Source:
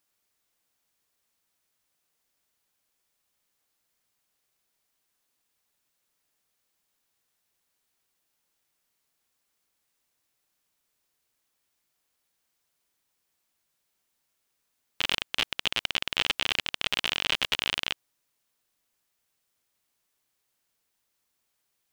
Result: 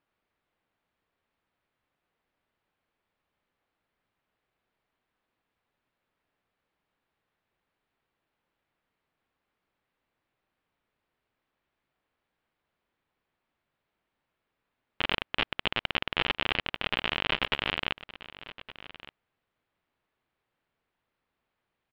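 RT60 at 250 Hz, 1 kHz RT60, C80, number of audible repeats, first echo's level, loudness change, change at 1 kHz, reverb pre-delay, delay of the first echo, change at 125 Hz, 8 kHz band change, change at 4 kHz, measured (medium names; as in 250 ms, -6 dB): no reverb, no reverb, no reverb, 1, -16.5 dB, -2.0 dB, +3.5 dB, no reverb, 1166 ms, +5.5 dB, under -20 dB, -4.0 dB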